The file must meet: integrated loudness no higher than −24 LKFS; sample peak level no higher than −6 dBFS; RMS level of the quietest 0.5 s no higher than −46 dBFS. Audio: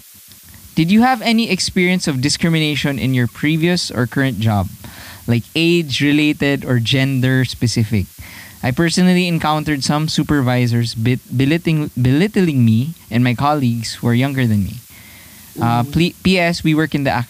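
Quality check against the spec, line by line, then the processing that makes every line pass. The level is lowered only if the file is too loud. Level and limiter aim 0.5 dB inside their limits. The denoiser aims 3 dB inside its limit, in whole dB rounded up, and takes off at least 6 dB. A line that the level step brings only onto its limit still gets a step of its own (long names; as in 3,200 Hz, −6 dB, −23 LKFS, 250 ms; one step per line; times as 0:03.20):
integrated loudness −16.0 LKFS: out of spec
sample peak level −4.0 dBFS: out of spec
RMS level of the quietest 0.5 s −42 dBFS: out of spec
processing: level −8.5 dB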